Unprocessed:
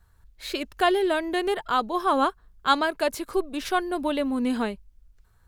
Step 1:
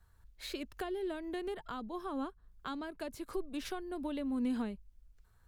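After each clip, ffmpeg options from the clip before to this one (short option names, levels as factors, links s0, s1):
-filter_complex "[0:a]acrossover=split=280[s0][s1];[s1]acompressor=threshold=0.0178:ratio=10[s2];[s0][s2]amix=inputs=2:normalize=0,volume=0.531"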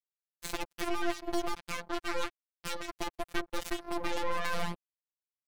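-af "aeval=exprs='0.0501*(cos(1*acos(clip(val(0)/0.0501,-1,1)))-cos(1*PI/2))+0.0178*(cos(3*acos(clip(val(0)/0.0501,-1,1)))-cos(3*PI/2))+0.00355*(cos(5*acos(clip(val(0)/0.0501,-1,1)))-cos(5*PI/2))+0.0178*(cos(8*acos(clip(val(0)/0.0501,-1,1)))-cos(8*PI/2))':c=same,acrusher=bits=4:mix=0:aa=0.5,afftfilt=real='hypot(re,im)*cos(PI*b)':imag='0':win_size=1024:overlap=0.75,volume=1.78"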